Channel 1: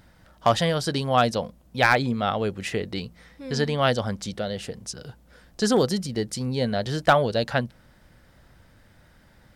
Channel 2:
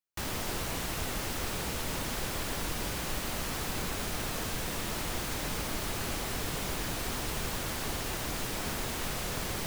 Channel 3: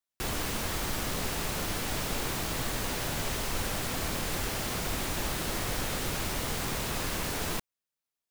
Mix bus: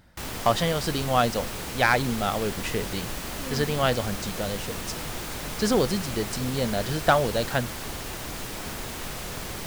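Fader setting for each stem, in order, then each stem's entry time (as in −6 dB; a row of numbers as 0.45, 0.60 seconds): −2.0, 0.0, −10.0 decibels; 0.00, 0.00, 0.00 seconds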